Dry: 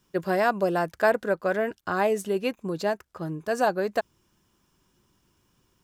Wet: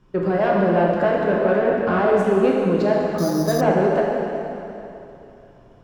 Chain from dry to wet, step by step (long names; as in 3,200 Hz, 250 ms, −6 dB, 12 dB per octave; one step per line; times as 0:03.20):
spectral tilt −4.5 dB per octave
brickwall limiter −16.5 dBFS, peak gain reduction 9.5 dB
mid-hump overdrive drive 17 dB, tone 3,100 Hz, clips at −10 dBFS
dense smooth reverb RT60 3 s, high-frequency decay 0.9×, DRR −3.5 dB
0:03.18–0:03.61: bad sample-rate conversion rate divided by 8×, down filtered, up hold
level −1.5 dB